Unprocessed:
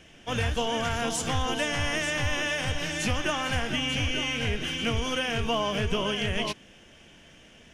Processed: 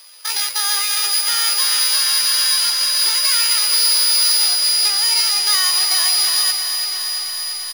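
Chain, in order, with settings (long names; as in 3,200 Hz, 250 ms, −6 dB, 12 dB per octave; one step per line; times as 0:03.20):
samples sorted by size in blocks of 16 samples
high-shelf EQ 2,500 Hz +5 dB
double-tracking delay 18 ms −14 dB
in parallel at −7 dB: floating-point word with a short mantissa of 2 bits
on the sum: high-pass filter 890 Hz 12 dB per octave
pitch shifter +10 semitones
notch filter 7,900 Hz, Q 11
repeating echo 732 ms, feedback 30%, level −15 dB
boost into a limiter +11 dB
feedback echo at a low word length 337 ms, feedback 80%, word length 7 bits, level −9 dB
level −4 dB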